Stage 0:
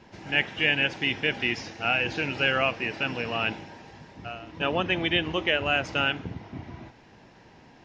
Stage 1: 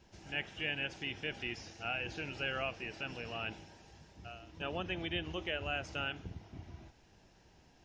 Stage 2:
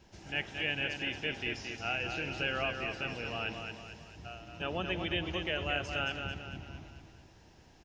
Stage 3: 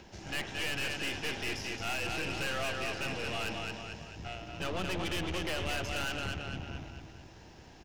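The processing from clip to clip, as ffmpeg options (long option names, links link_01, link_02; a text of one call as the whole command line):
ffmpeg -i in.wav -filter_complex "[0:a]acrossover=split=3200[link_01][link_02];[link_02]acompressor=threshold=-45dB:ratio=4:attack=1:release=60[link_03];[link_01][link_03]amix=inputs=2:normalize=0,equalizer=frequency=125:width_type=o:width=1:gain=-9,equalizer=frequency=250:width_type=o:width=1:gain=-11,equalizer=frequency=500:width_type=o:width=1:gain=-8,equalizer=frequency=1000:width_type=o:width=1:gain=-11,equalizer=frequency=2000:width_type=o:width=1:gain=-11,equalizer=frequency=4000:width_type=o:width=1:gain=-6" out.wav
ffmpeg -i in.wav -af "aecho=1:1:222|444|666|888|1110:0.501|0.221|0.097|0.0427|0.0188,volume=3dB" out.wav
ffmpeg -i in.wav -filter_complex "[0:a]aeval=exprs='(tanh(100*val(0)+0.6)-tanh(0.6))/100':channel_layout=same,acrossover=split=170|4300[link_01][link_02][link_03];[link_02]acompressor=mode=upward:threshold=-59dB:ratio=2.5[link_04];[link_01][link_04][link_03]amix=inputs=3:normalize=0,volume=8dB" out.wav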